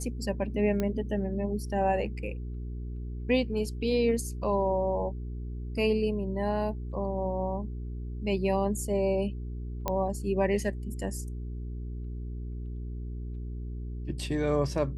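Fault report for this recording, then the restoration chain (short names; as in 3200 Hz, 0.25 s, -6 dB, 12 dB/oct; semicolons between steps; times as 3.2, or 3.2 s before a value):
hum 60 Hz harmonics 7 -36 dBFS
0.8 pop -17 dBFS
9.88 pop -14 dBFS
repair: de-click; de-hum 60 Hz, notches 7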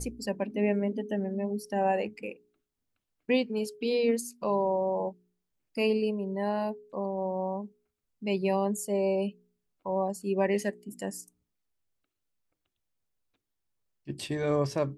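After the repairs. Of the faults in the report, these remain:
none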